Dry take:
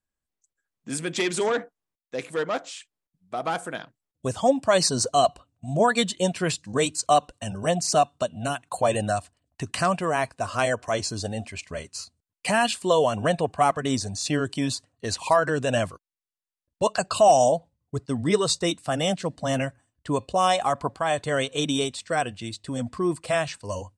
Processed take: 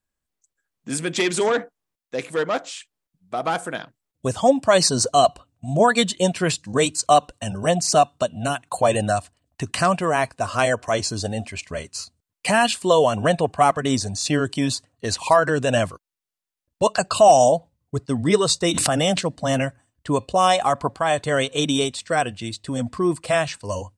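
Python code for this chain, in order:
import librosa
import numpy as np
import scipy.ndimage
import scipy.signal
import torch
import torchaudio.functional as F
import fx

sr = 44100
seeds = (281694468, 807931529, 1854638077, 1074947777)

y = fx.pre_swell(x, sr, db_per_s=28.0, at=(18.71, 19.19), fade=0.02)
y = y * 10.0 ** (4.0 / 20.0)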